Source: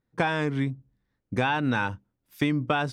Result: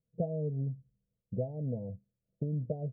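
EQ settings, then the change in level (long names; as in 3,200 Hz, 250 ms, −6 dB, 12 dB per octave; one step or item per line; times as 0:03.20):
Chebyshev low-pass with heavy ripple 680 Hz, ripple 9 dB
parametric band 290 Hz −10 dB 0.76 octaves
0.0 dB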